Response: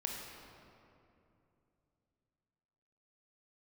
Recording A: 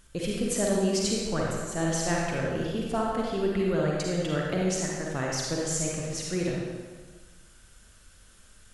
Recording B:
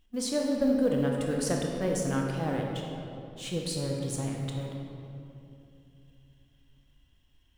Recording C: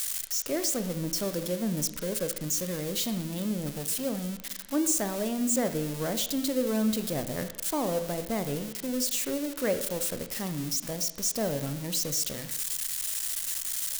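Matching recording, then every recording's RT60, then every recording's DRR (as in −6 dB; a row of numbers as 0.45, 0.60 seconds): B; 1.4, 2.8, 1.0 seconds; −3.5, −0.5, 9.0 decibels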